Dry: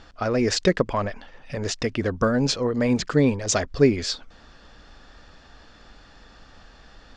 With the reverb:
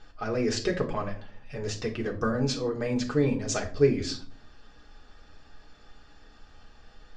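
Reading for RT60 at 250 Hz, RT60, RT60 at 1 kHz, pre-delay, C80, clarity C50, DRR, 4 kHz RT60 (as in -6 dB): 0.75 s, 0.45 s, 0.40 s, 3 ms, 17.0 dB, 12.0 dB, -1.5 dB, 0.30 s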